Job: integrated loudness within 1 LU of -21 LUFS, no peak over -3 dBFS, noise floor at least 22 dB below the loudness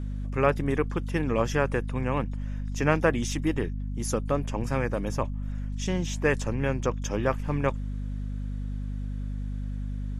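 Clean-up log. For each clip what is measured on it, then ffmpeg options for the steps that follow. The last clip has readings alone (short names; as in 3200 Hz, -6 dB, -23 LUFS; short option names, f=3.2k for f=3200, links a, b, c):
hum 50 Hz; harmonics up to 250 Hz; hum level -29 dBFS; loudness -29.0 LUFS; peak -7.5 dBFS; loudness target -21.0 LUFS
-> -af "bandreject=f=50:t=h:w=4,bandreject=f=100:t=h:w=4,bandreject=f=150:t=h:w=4,bandreject=f=200:t=h:w=4,bandreject=f=250:t=h:w=4"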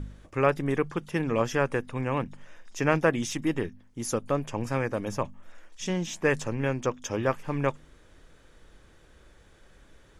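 hum none; loudness -29.0 LUFS; peak -8.0 dBFS; loudness target -21.0 LUFS
-> -af "volume=8dB,alimiter=limit=-3dB:level=0:latency=1"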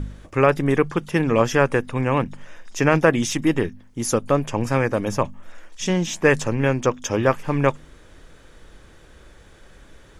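loudness -21.5 LUFS; peak -3.0 dBFS; noise floor -49 dBFS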